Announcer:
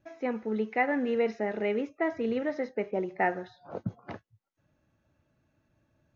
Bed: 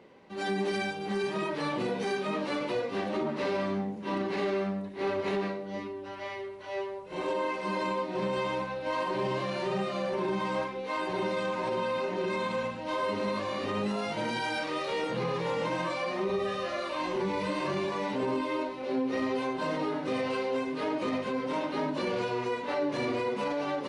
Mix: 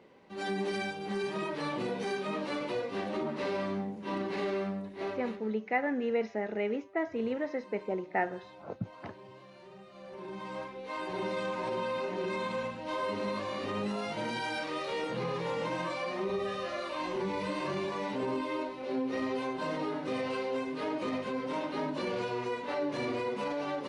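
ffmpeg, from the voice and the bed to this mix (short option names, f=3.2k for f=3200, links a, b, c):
-filter_complex "[0:a]adelay=4950,volume=-3dB[a];[1:a]volume=15dB,afade=t=out:st=4.91:d=0.51:silence=0.125893,afade=t=in:st=9.9:d=1.47:silence=0.125893[b];[a][b]amix=inputs=2:normalize=0"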